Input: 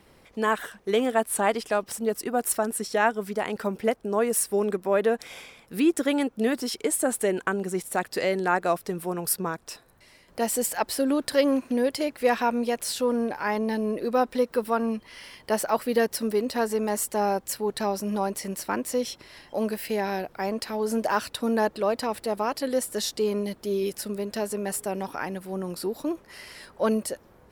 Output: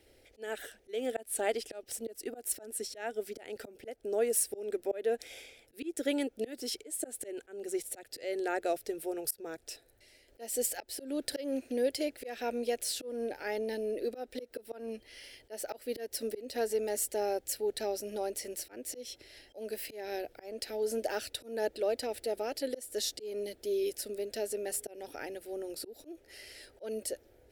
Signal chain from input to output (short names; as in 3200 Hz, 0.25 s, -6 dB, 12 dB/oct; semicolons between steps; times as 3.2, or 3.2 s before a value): auto swell 0.235 s; fixed phaser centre 440 Hz, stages 4; gain -4 dB